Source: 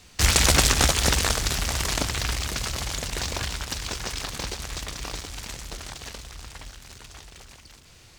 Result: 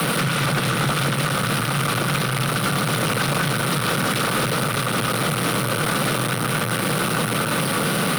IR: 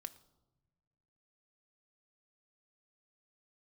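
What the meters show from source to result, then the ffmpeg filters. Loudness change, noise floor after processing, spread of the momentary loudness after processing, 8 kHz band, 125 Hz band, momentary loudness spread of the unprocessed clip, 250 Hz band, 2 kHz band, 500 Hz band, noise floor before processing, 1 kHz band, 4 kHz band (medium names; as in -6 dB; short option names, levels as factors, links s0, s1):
+3.0 dB, -24 dBFS, 1 LU, -1.0 dB, +7.5 dB, 23 LU, +12.0 dB, +7.5 dB, +9.5 dB, -52 dBFS, +10.0 dB, +2.0 dB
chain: -filter_complex "[0:a]aeval=exprs='val(0)+0.5*0.126*sgn(val(0))':c=same,acrossover=split=120[s0][s1];[s1]acrusher=bits=3:mix=0:aa=0.000001[s2];[s0][s2]amix=inputs=2:normalize=0,lowshelf=f=160:g=3.5,acrossover=split=4000[s3][s4];[s4]acompressor=threshold=0.0282:ratio=4:attack=1:release=60[s5];[s3][s5]amix=inputs=2:normalize=0,superequalizer=7b=1.58:10b=2.51:14b=0.631:15b=0.282:16b=2.51,alimiter=limit=0.316:level=0:latency=1:release=116,highpass=73,afreqshift=72,asoftclip=type=hard:threshold=0.1,volume=1.41"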